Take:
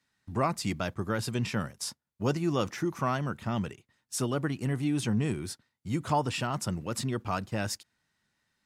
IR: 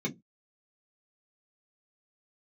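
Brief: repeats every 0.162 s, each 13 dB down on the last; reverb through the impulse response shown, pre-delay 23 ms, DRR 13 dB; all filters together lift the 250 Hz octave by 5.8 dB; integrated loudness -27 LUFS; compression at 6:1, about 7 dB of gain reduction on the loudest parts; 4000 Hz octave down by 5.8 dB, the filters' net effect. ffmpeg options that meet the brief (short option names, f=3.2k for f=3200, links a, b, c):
-filter_complex "[0:a]equalizer=f=250:t=o:g=7.5,equalizer=f=4k:t=o:g=-8.5,acompressor=threshold=-27dB:ratio=6,aecho=1:1:162|324|486:0.224|0.0493|0.0108,asplit=2[a][b];[1:a]atrim=start_sample=2205,adelay=23[c];[b][c]afir=irnorm=-1:irlink=0,volume=-18dB[d];[a][d]amix=inputs=2:normalize=0,volume=4.5dB"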